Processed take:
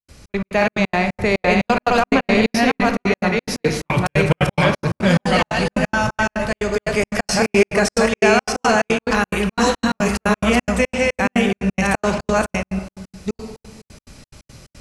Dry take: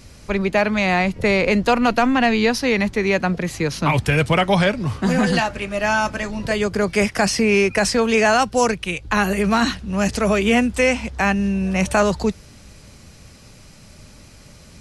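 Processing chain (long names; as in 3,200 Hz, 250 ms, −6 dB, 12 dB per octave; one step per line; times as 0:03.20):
delay that plays each chunk backwards 609 ms, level −1 dB
on a send at −6 dB: convolution reverb RT60 1.4 s, pre-delay 18 ms
on the sum: gate pattern ".xx.x.xx.x.xx.xx" 177 BPM −60 dB
level −1 dB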